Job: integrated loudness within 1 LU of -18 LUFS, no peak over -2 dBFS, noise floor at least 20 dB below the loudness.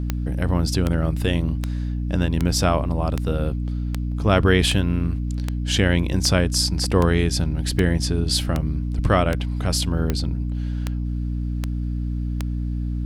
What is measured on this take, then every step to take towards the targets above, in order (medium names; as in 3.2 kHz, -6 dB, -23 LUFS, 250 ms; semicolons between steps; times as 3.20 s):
clicks found 17; hum 60 Hz; highest harmonic 300 Hz; hum level -22 dBFS; loudness -22.5 LUFS; peak level -4.0 dBFS; loudness target -18.0 LUFS
-> de-click; hum notches 60/120/180/240/300 Hz; trim +4.5 dB; peak limiter -2 dBFS